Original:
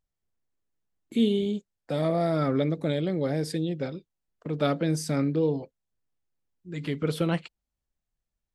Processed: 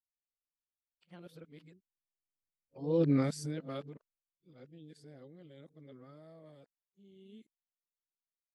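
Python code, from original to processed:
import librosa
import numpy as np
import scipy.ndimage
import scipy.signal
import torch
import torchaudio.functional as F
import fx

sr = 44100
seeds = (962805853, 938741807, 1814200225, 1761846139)

y = np.flip(x).copy()
y = fx.doppler_pass(y, sr, speed_mps=16, closest_m=1.6, pass_at_s=3.09)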